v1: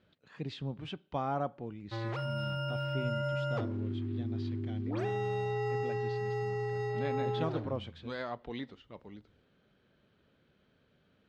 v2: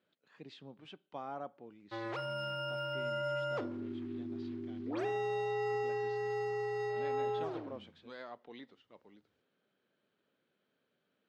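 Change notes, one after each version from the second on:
speech -8.5 dB; master: add high-pass 250 Hz 12 dB/octave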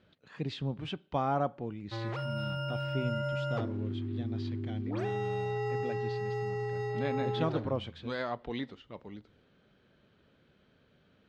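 speech +12.0 dB; master: remove high-pass 250 Hz 12 dB/octave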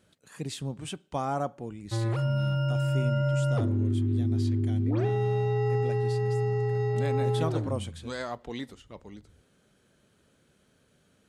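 speech: remove low-pass 4.1 kHz 24 dB/octave; background: add bass shelf 400 Hz +11.5 dB

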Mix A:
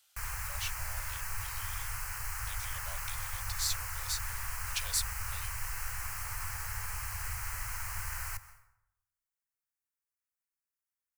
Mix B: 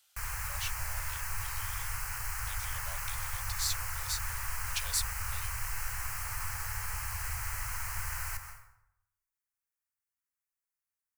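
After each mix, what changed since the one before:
background: send +8.5 dB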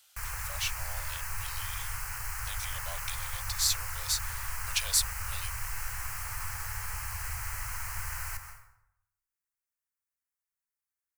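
speech +6.0 dB

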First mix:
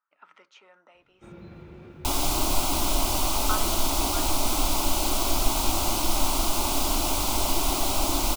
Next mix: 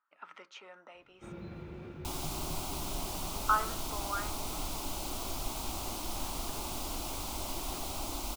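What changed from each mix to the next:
speech +4.5 dB; second sound -11.0 dB; reverb: off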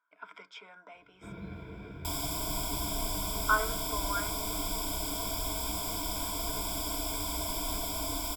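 second sound: add treble shelf 8.3 kHz +4 dB; master: add rippled EQ curve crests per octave 1.7, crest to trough 16 dB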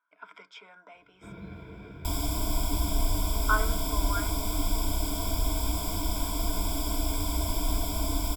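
second sound: add bass shelf 300 Hz +12 dB

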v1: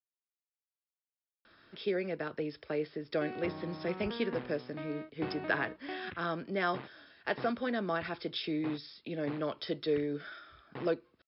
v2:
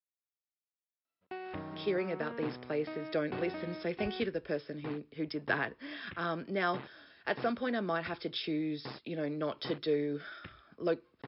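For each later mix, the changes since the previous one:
background: entry -1.90 s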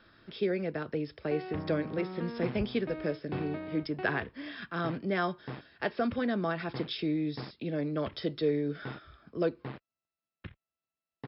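speech: entry -1.45 s; master: add bass shelf 220 Hz +10 dB

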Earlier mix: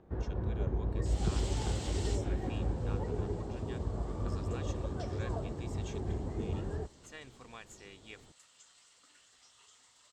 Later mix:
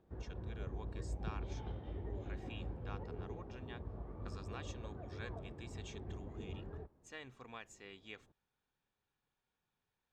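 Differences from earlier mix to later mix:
first sound -10.5 dB; second sound: muted; master: add treble shelf 8 kHz -11 dB

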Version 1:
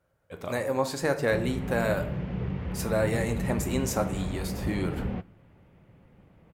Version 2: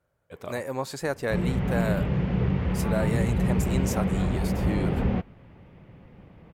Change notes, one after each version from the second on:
background +7.0 dB; reverb: off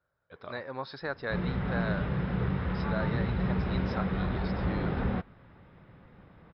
background +3.5 dB; master: add rippled Chebyshev low-pass 5.3 kHz, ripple 9 dB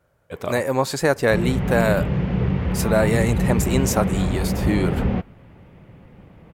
speech +10.0 dB; master: remove rippled Chebyshev low-pass 5.3 kHz, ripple 9 dB

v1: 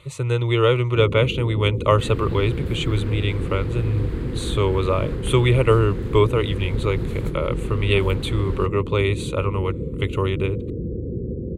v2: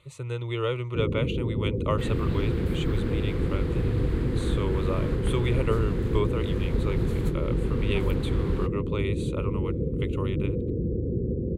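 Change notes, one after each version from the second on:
speech -10.5 dB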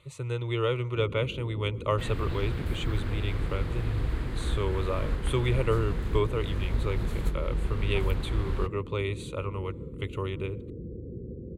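speech: send on; first sound -11.5 dB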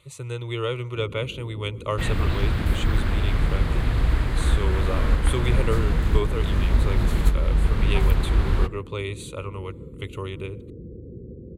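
speech: add treble shelf 5.2 kHz +10.5 dB; second sound +9.5 dB

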